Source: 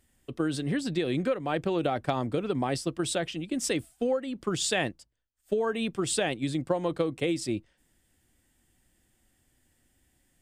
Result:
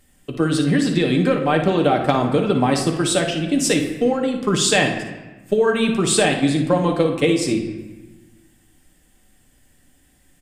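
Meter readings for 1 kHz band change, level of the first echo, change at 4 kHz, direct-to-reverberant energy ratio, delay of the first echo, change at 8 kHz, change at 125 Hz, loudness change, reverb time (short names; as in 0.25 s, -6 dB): +11.5 dB, -10.5 dB, +11.0 dB, 2.0 dB, 57 ms, +10.5 dB, +12.0 dB, +11.0 dB, 1.2 s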